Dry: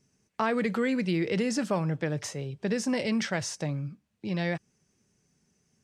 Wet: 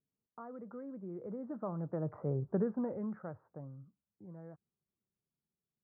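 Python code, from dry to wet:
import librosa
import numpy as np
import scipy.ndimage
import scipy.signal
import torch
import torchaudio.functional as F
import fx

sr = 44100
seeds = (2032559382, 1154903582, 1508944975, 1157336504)

y = fx.doppler_pass(x, sr, speed_mps=16, closest_m=2.7, pass_at_s=2.36)
y = scipy.signal.sosfilt(scipy.signal.ellip(4, 1.0, 60, 1300.0, 'lowpass', fs=sr, output='sos'), y)
y = y * librosa.db_to_amplitude(2.0)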